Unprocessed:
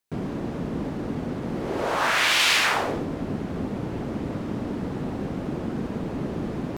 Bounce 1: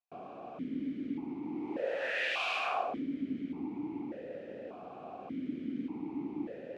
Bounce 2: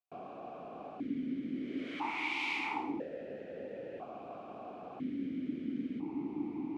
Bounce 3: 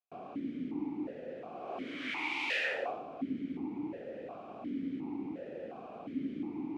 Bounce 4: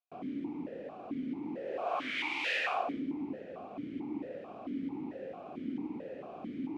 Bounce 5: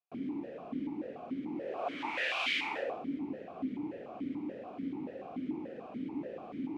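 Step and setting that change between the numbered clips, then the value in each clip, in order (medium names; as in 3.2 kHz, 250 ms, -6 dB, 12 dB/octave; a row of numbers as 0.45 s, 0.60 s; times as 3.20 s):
stepped vowel filter, rate: 1.7 Hz, 1 Hz, 2.8 Hz, 4.5 Hz, 6.9 Hz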